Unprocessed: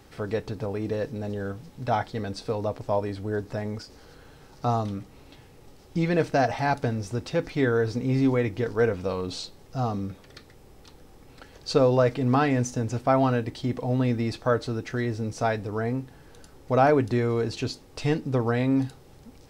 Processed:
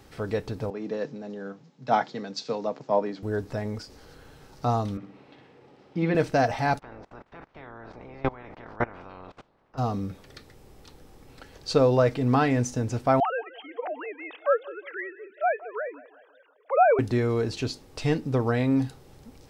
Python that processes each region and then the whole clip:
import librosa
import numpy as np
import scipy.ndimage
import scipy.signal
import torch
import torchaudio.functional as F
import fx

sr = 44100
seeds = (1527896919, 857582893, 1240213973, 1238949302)

y = fx.chain(x, sr, fx.cheby1_bandpass(low_hz=140.0, high_hz=7100.0, order=5),
    fx.band_widen(depth_pct=70), at=(0.7, 3.23))
y = fx.chain(y, sr, fx.bandpass_edges(low_hz=190.0, high_hz=2800.0),
    fx.room_flutter(wall_m=10.4, rt60_s=0.53), at=(4.97, 6.15))
y = fx.spec_clip(y, sr, under_db=29, at=(6.78, 9.77), fade=0.02)
y = fx.lowpass(y, sr, hz=1300.0, slope=12, at=(6.78, 9.77), fade=0.02)
y = fx.level_steps(y, sr, step_db=22, at=(6.78, 9.77), fade=0.02)
y = fx.chain(y, sr, fx.sine_speech(),
    fx.highpass(hz=500.0, slope=24),
    fx.echo_feedback(ms=181, feedback_pct=47, wet_db=-19.0), at=(13.2, 16.99))